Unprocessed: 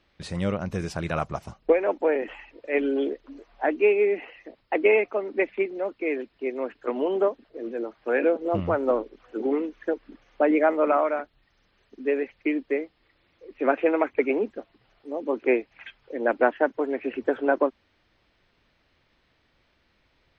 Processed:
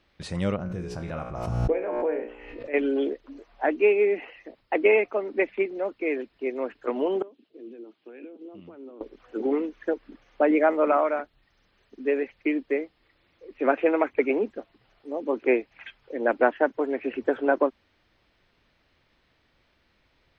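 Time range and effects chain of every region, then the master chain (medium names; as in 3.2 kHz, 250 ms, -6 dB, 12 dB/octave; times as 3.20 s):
0.56–2.74 s: tilt EQ -2 dB/octave + feedback comb 60 Hz, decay 0.57 s, mix 80% + swell ahead of each attack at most 38 dB/s
7.22–9.01 s: compression 5:1, threshold -33 dBFS + band-pass 290–3300 Hz + high-order bell 1 kHz -14.5 dB 2.4 oct
whole clip: none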